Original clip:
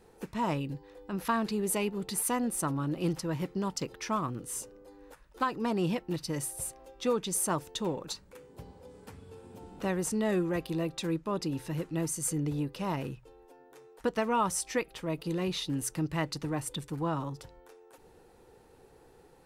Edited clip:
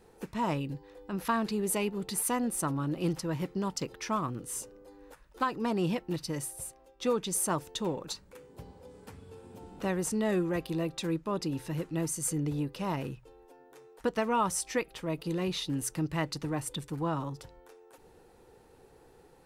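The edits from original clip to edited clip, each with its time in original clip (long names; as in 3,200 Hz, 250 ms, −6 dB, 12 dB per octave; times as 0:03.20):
0:06.22–0:07.00: fade out, to −10 dB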